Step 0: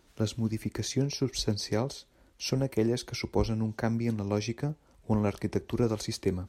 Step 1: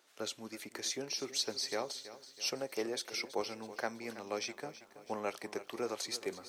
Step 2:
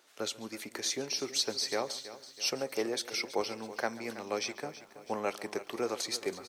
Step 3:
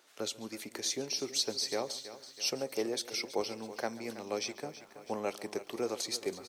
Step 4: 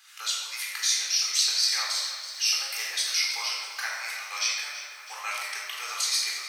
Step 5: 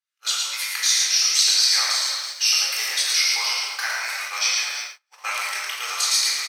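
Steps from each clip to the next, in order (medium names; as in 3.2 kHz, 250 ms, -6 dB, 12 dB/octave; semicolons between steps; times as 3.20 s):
high-pass 600 Hz 12 dB/octave; band-stop 950 Hz, Q 16; bit-crushed delay 326 ms, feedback 55%, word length 10-bit, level -14.5 dB; trim -1 dB
echo from a far wall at 24 m, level -19 dB; trim +4 dB
dynamic bell 1.5 kHz, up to -6 dB, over -50 dBFS, Q 0.84
high-pass 1.3 kHz 24 dB/octave; in parallel at +3 dB: peak limiter -28.5 dBFS, peak gain reduction 10.5 dB; on the sum: simulated room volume 1300 m³, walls mixed, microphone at 3.9 m
on a send: multi-tap echo 110/333 ms -3.5/-14.5 dB; on the sum: gate -35 dBFS, range -42 dB; trim +5 dB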